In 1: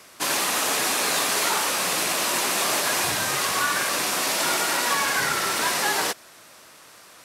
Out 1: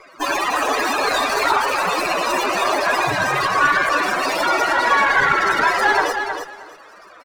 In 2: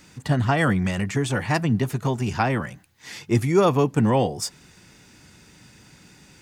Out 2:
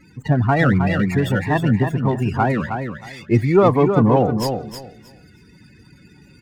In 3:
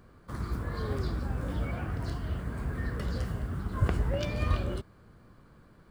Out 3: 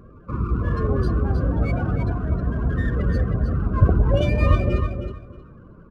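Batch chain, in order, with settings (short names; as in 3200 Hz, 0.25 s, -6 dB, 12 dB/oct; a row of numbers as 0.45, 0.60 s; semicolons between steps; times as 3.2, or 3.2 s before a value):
loudest bins only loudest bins 32; on a send: feedback echo 0.315 s, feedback 19%, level -7 dB; on the sum: running maximum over 3 samples; normalise peaks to -3 dBFS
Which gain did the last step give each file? +9.5, +4.5, +11.0 dB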